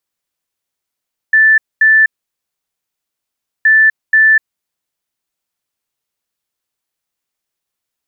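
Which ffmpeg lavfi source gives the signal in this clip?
ffmpeg -f lavfi -i "aevalsrc='0.562*sin(2*PI*1760*t)*clip(min(mod(mod(t,2.32),0.48),0.25-mod(mod(t,2.32),0.48))/0.005,0,1)*lt(mod(t,2.32),0.96)':duration=4.64:sample_rate=44100" out.wav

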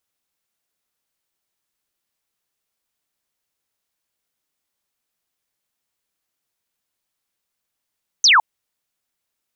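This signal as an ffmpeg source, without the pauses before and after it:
ffmpeg -f lavfi -i "aevalsrc='0.355*clip(t/0.002,0,1)*clip((0.16-t)/0.002,0,1)*sin(2*PI*6500*0.16/log(820/6500)*(exp(log(820/6500)*t/0.16)-1))':duration=0.16:sample_rate=44100" out.wav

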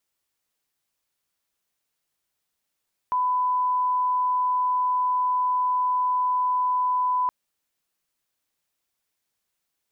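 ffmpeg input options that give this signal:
ffmpeg -f lavfi -i "sine=frequency=1000:duration=4.17:sample_rate=44100,volume=-1.94dB" out.wav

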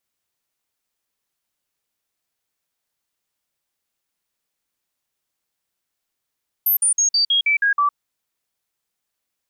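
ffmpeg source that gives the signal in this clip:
ffmpeg -f lavfi -i "aevalsrc='0.2*clip(min(mod(t,0.16),0.11-mod(t,0.16))/0.005,0,1)*sin(2*PI*13100*pow(2,-floor(t/0.16)/2)*mod(t,0.16))':duration=1.28:sample_rate=44100" out.wav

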